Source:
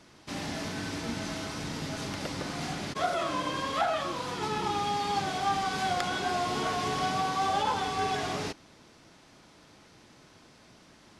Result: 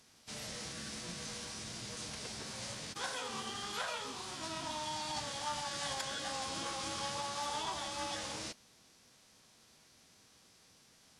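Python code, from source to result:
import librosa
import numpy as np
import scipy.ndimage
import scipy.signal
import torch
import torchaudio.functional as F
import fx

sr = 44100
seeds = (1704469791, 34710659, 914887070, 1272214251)

y = scipy.signal.lfilter([1.0, -0.8], [1.0], x)
y = fx.pitch_keep_formants(y, sr, semitones=-5.0)
y = F.gain(torch.from_numpy(y), 2.0).numpy()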